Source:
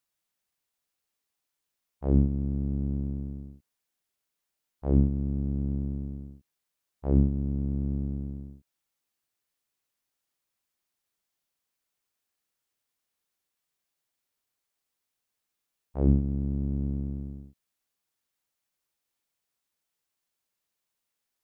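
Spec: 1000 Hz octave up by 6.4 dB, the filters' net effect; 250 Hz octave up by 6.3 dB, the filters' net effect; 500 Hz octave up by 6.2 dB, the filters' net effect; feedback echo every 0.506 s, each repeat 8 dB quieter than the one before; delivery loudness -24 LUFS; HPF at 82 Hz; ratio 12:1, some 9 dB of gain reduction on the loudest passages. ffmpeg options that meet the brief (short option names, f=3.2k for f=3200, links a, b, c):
-af "highpass=82,equalizer=f=250:t=o:g=7,equalizer=f=500:t=o:g=4,equalizer=f=1k:t=o:g=6.5,acompressor=threshold=-21dB:ratio=12,aecho=1:1:506|1012|1518|2024|2530:0.398|0.159|0.0637|0.0255|0.0102,volume=5.5dB"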